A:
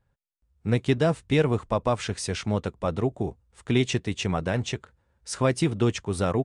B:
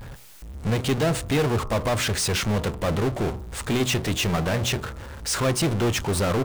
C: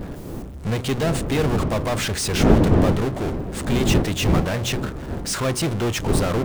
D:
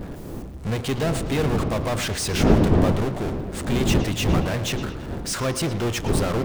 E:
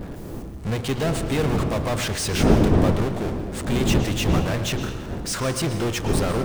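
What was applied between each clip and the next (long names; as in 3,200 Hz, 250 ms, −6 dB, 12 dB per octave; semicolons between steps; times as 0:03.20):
power curve on the samples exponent 0.35; hum removal 62.15 Hz, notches 22; level −6 dB
wind on the microphone 290 Hz −23 dBFS
bucket-brigade delay 112 ms, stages 4,096, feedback 52%, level −13 dB; level −2 dB
convolution reverb, pre-delay 134 ms, DRR 12 dB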